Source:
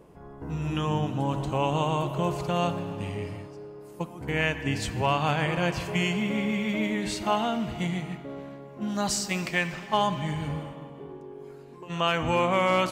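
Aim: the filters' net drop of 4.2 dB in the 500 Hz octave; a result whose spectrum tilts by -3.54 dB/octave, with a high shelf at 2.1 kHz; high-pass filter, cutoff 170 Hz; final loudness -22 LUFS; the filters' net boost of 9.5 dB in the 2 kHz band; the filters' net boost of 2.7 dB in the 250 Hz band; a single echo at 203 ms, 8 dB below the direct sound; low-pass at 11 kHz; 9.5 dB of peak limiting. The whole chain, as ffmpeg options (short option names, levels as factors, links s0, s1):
-af "highpass=170,lowpass=11000,equalizer=f=250:t=o:g=8,equalizer=f=500:t=o:g=-8.5,equalizer=f=2000:t=o:g=7,highshelf=f=2100:g=8,alimiter=limit=0.237:level=0:latency=1,aecho=1:1:203:0.398,volume=1.33"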